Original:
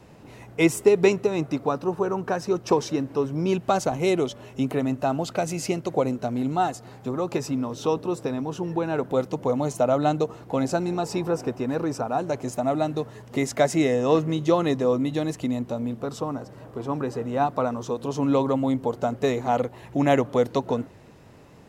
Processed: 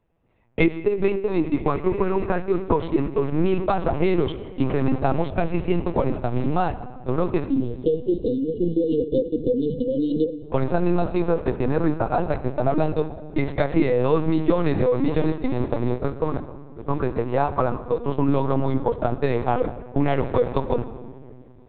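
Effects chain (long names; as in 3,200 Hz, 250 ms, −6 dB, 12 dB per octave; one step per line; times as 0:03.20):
dynamic equaliser 600 Hz, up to −3 dB, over −31 dBFS, Q 1.8
on a send: feedback delay with all-pass diffusion 1,098 ms, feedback 55%, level −13 dB
on the sum: noise gate −28 dBFS, range −28 dB
high-frequency loss of the air 170 metres
mains-hum notches 50/100/150 Hz
downward compressor 5 to 1, threshold −25 dBFS, peak gain reduction 11.5 dB
time-frequency box erased 0:07.46–0:10.43, 550–2,800 Hz
rectangular room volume 3,000 cubic metres, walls mixed, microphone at 0.67 metres
linear-prediction vocoder at 8 kHz pitch kept
level +8 dB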